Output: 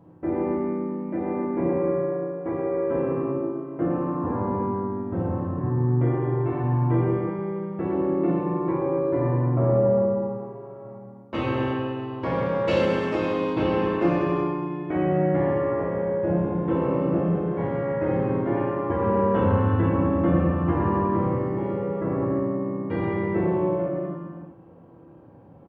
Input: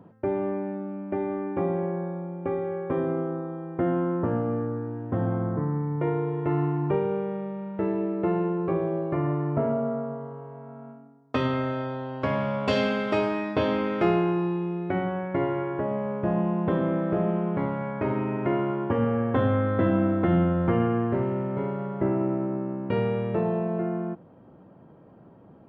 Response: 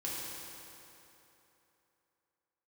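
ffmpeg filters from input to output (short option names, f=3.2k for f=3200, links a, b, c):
-filter_complex "[0:a]asplit=2[a][b];[b]asetrate=37084,aresample=44100,atempo=1.18921,volume=0dB[c];[a][c]amix=inputs=2:normalize=0[d];[1:a]atrim=start_sample=2205,afade=t=out:st=0.43:d=0.01,atrim=end_sample=19404[e];[d][e]afir=irnorm=-1:irlink=0,volume=-3.5dB"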